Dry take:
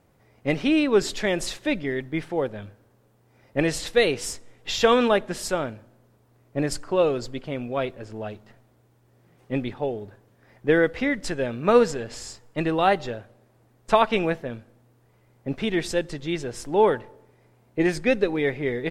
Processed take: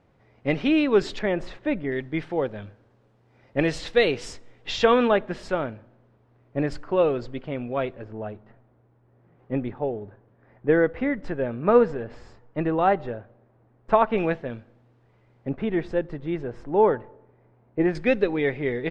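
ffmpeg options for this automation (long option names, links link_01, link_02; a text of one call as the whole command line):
ffmpeg -i in.wav -af "asetnsamples=nb_out_samples=441:pad=0,asendcmd='1.19 lowpass f 1800;1.92 lowpass f 4300;4.84 lowpass f 2700;8.04 lowpass f 1600;14.18 lowpass f 3600;15.49 lowpass f 1500;17.95 lowpass f 3600',lowpass=3800" out.wav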